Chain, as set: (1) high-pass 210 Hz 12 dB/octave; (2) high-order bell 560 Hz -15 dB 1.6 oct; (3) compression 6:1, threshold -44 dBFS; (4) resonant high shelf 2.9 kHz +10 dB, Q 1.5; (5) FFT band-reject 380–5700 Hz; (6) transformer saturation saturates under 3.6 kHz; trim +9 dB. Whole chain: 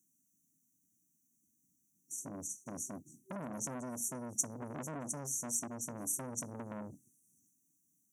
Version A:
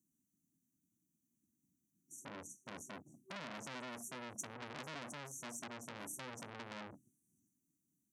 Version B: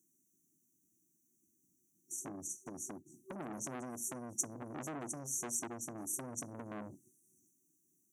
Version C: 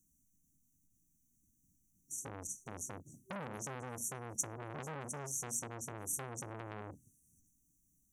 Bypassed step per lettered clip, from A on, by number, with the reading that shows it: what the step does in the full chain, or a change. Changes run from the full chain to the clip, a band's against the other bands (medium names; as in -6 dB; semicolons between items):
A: 4, 2 kHz band +14.0 dB; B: 2, 2 kHz band +2.5 dB; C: 1, 250 Hz band -7.5 dB